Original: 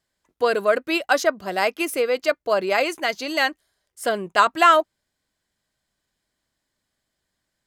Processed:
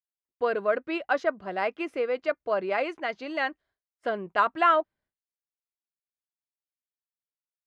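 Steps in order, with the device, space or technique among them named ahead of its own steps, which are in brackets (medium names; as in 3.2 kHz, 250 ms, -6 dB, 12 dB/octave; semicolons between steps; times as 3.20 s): hearing-loss simulation (low-pass 2.3 kHz 12 dB/octave; expander -50 dBFS); trim -6 dB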